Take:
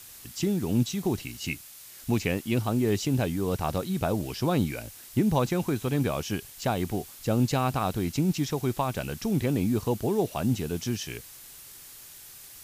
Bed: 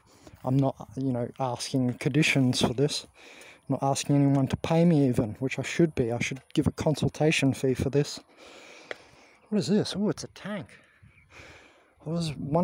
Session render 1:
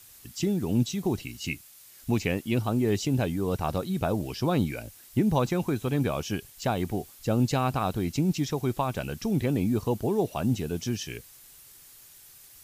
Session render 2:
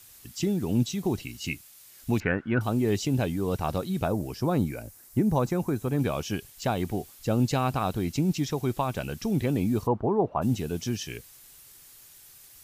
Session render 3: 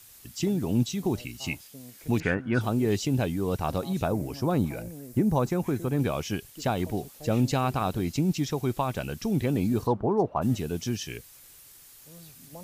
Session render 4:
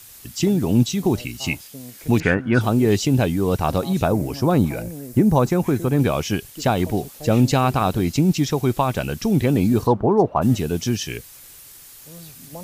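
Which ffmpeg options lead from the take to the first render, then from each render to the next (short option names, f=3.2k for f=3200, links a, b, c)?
-af "afftdn=nr=6:nf=-47"
-filter_complex "[0:a]asettb=1/sr,asplit=3[a][b][c];[a]atrim=end=2.204[d];[b]atrim=start=2.2:end=2.61,asetpts=PTS-STARTPTS,afade=t=in:d=0.004:c=qsin,afade=t=out:st=0.406:d=0.004:c=qsin,lowpass=f=1.5k:t=q:w=11[e];[c]atrim=start=2.606[f];[d][e]acrossfade=d=0.004:c1=hsin:c2=qsin[g];[g][f]acrossfade=d=0.004:c1=qsin:c2=hsin,asettb=1/sr,asplit=3[h][i][j];[h]atrim=end=4.084[k];[i]atrim=start=4.08:end=5.99,asetpts=PTS-STARTPTS,afade=t=in:d=0.004:c=qsin,afade=t=out:st=1.906:d=0.004:c=qsin,equalizer=f=3.2k:w=1.2:g=-10[l];[j]atrim=start=5.986[m];[k][l]acrossfade=d=0.004:c1=hsin:c2=qsin[n];[n][m]acrossfade=d=0.004:c1=qsin:c2=hsin,asplit=3[o][p][q];[o]afade=t=out:st=9.86:d=0.02[r];[p]lowpass=f=1.1k:t=q:w=2.5,afade=t=in:st=9.86:d=0.02,afade=t=out:st=10.41:d=0.02[s];[q]afade=t=in:st=10.41:d=0.02[t];[r][s][t]amix=inputs=3:normalize=0"
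-filter_complex "[1:a]volume=-20.5dB[a];[0:a][a]amix=inputs=2:normalize=0"
-af "volume=8dB"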